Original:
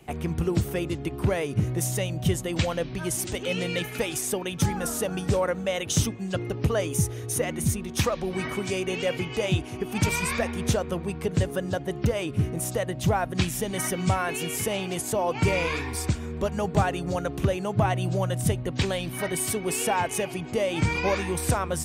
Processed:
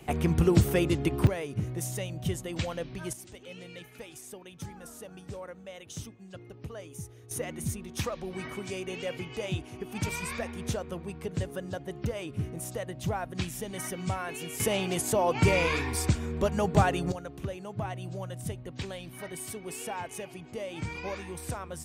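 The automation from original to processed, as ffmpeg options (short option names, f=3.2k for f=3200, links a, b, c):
-af "asetnsamples=n=441:p=0,asendcmd='1.27 volume volume -7dB;3.13 volume volume -17dB;7.31 volume volume -8dB;14.6 volume volume 0dB;17.12 volume volume -11.5dB',volume=3dB"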